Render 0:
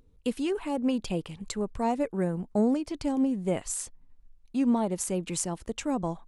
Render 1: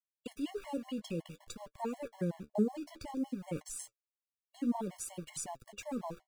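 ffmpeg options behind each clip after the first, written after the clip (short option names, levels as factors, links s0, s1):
-af "aeval=exprs='val(0)*gte(abs(val(0)),0.00841)':c=same,flanger=delay=6.5:depth=8:regen=50:speed=0.56:shape=sinusoidal,afftfilt=real='re*gt(sin(2*PI*5.4*pts/sr)*(1-2*mod(floor(b*sr/1024/560),2)),0)':imag='im*gt(sin(2*PI*5.4*pts/sr)*(1-2*mod(floor(b*sr/1024/560),2)),0)':win_size=1024:overlap=0.75,volume=0.794"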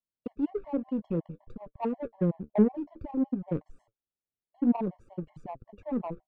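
-af "adynamicsmooth=sensitivity=1.5:basefreq=510,volume=2.66"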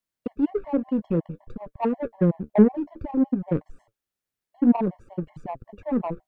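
-af "equalizer=f=1700:w=2.3:g=4,volume=2.11"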